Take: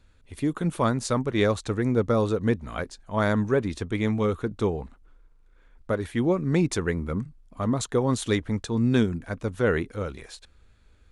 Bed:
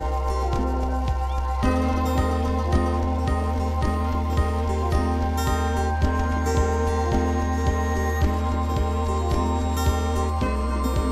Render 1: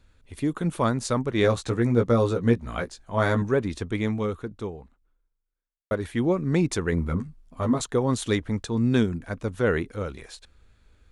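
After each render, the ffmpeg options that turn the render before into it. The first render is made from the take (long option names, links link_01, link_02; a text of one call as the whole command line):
ffmpeg -i in.wav -filter_complex "[0:a]asettb=1/sr,asplit=3[link_01][link_02][link_03];[link_01]atrim=end=1.424[link_04];[link_02]atrim=start=1.42:end=3.42,asetpts=PTS-STARTPTS,afade=type=in:duration=0.004:curve=qsin,afade=type=out:start_time=1.996:duration=0.004:curve=qsin,asplit=2[link_05][link_06];[link_06]adelay=17,volume=-4.5dB[link_07];[link_05][link_07]amix=inputs=2:normalize=0,atrim=end_sample=88200[link_08];[link_03]atrim=start=3.416[link_09];[link_04][link_08]acrossfade=duration=0.004:curve1=hsin:curve2=qsin[link_10];[link_10][link_09]acrossfade=duration=0.004:curve1=qsin:curve2=hsin,asettb=1/sr,asplit=3[link_11][link_12][link_13];[link_11]atrim=end=6.914[link_14];[link_12]atrim=start=6.91:end=7.81,asetpts=PTS-STARTPTS,afade=type=in:duration=0.004:curve=qsin,afade=type=out:start_time=0.896:duration=0.004:curve=qsin,asplit=2[link_15][link_16];[link_16]adelay=12,volume=-2.5dB[link_17];[link_15][link_17]amix=inputs=2:normalize=0,atrim=end_sample=39690[link_18];[link_13]atrim=start=7.806[link_19];[link_14][link_18]acrossfade=duration=0.004:curve1=hsin:curve2=qsin[link_20];[link_20][link_19]acrossfade=duration=0.004:curve1=qsin:curve2=hsin,asplit=2[link_21][link_22];[link_21]atrim=end=5.91,asetpts=PTS-STARTPTS,afade=type=out:start_time=3.94:duration=1.97:curve=qua[link_23];[link_22]atrim=start=5.91,asetpts=PTS-STARTPTS,afade=type=in:duration=0.004:curve=hsin[link_24];[link_23][link_24]concat=n=2:v=0:a=1" out.wav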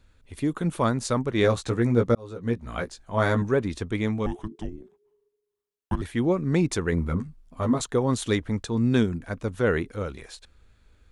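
ffmpeg -i in.wav -filter_complex "[0:a]asettb=1/sr,asplit=3[link_01][link_02][link_03];[link_01]atrim=end=4.264[link_04];[link_02]atrim=start=4.26:end=6.02,asetpts=PTS-STARTPTS,afade=type=in:duration=0.004:curve=qsin,afade=type=out:start_time=1.756:duration=0.004:curve=qsin,afreqshift=-440[link_05];[link_03]atrim=start=6.016[link_06];[link_04][link_05]acrossfade=duration=0.004:curve1=hsin:curve2=qsin[link_07];[link_07][link_06]acrossfade=duration=0.004:curve1=qsin:curve2=hsin,asplit=2[link_08][link_09];[link_08]atrim=end=2.15,asetpts=PTS-STARTPTS,afade=type=out:start_time=2.146:duration=0.004:curve=hsin[link_10];[link_09]atrim=start=2.15,asetpts=PTS-STARTPTS,afade=type=in:duration=0.7[link_11];[link_10][link_11]concat=n=2:v=0:a=1" out.wav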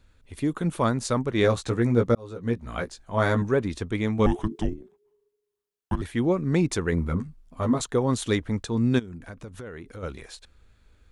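ffmpeg -i in.wav -filter_complex "[0:a]asettb=1/sr,asplit=3[link_01][link_02][link_03];[link_01]atrim=end=4.194[link_04];[link_02]atrim=start=4.19:end=4.74,asetpts=PTS-STARTPTS,afade=type=in:duration=0.004:curve=qsin,afade=type=out:start_time=0.546:duration=0.004:curve=qsin,acontrast=85[link_05];[link_03]atrim=start=4.736[link_06];[link_04][link_05]acrossfade=duration=0.004:curve1=hsin:curve2=qsin[link_07];[link_07][link_06]acrossfade=duration=0.004:curve1=qsin:curve2=hsin,asplit=3[link_08][link_09][link_10];[link_08]afade=type=out:start_time=8.98:duration=0.02[link_11];[link_09]acompressor=threshold=-35dB:ratio=10:attack=3.2:release=140:knee=1:detection=peak,afade=type=in:start_time=8.98:duration=0.02,afade=type=out:start_time=10.02:duration=0.02[link_12];[link_10]afade=type=in:start_time=10.02:duration=0.02[link_13];[link_11][link_12][link_13]amix=inputs=3:normalize=0" out.wav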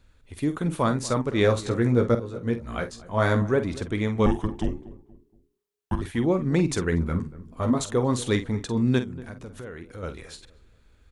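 ffmpeg -i in.wav -filter_complex "[0:a]asplit=2[link_01][link_02];[link_02]adelay=48,volume=-10.5dB[link_03];[link_01][link_03]amix=inputs=2:normalize=0,asplit=2[link_04][link_05];[link_05]adelay=236,lowpass=frequency=1000:poles=1,volume=-17dB,asplit=2[link_06][link_07];[link_07]adelay=236,lowpass=frequency=1000:poles=1,volume=0.39,asplit=2[link_08][link_09];[link_09]adelay=236,lowpass=frequency=1000:poles=1,volume=0.39[link_10];[link_04][link_06][link_08][link_10]amix=inputs=4:normalize=0" out.wav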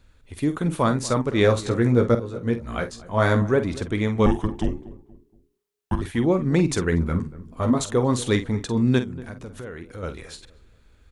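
ffmpeg -i in.wav -af "volume=2.5dB" out.wav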